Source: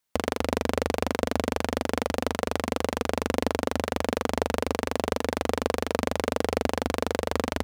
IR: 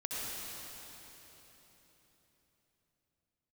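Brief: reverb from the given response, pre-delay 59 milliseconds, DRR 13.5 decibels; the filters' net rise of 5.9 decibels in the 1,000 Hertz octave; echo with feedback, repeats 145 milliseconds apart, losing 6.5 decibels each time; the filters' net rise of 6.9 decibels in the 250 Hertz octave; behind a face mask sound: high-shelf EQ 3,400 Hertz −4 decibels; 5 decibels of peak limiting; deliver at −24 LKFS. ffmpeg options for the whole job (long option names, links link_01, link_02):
-filter_complex "[0:a]equalizer=frequency=250:width_type=o:gain=7.5,equalizer=frequency=1000:width_type=o:gain=7.5,alimiter=limit=-7.5dB:level=0:latency=1,aecho=1:1:145|290|435|580|725|870:0.473|0.222|0.105|0.0491|0.0231|0.0109,asplit=2[link_01][link_02];[1:a]atrim=start_sample=2205,adelay=59[link_03];[link_02][link_03]afir=irnorm=-1:irlink=0,volume=-17.5dB[link_04];[link_01][link_04]amix=inputs=2:normalize=0,highshelf=frequency=3400:gain=-4"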